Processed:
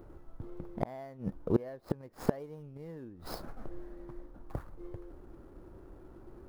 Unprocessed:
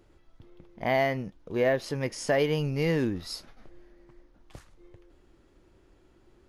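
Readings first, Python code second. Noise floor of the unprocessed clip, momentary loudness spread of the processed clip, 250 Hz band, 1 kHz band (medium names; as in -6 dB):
-62 dBFS, 21 LU, -5.0 dB, -11.0 dB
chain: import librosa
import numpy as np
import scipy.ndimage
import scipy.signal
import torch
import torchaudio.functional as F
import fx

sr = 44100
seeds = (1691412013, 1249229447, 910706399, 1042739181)

y = scipy.signal.medfilt(x, 15)
y = fx.gate_flip(y, sr, shuts_db=-23.0, range_db=-28)
y = fx.band_shelf(y, sr, hz=3800.0, db=-8.5, octaves=2.4)
y = y * 10.0 ** (9.0 / 20.0)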